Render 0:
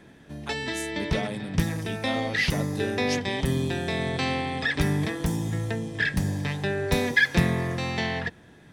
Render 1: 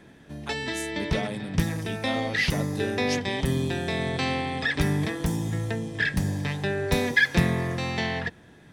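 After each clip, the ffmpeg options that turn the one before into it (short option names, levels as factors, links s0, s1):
-af anull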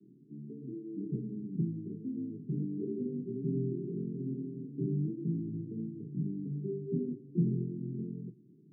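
-af "flanger=delay=9.7:depth=9.3:regen=-36:speed=1.1:shape=sinusoidal,asuperpass=centerf=220:order=20:qfactor=0.76,volume=0.794"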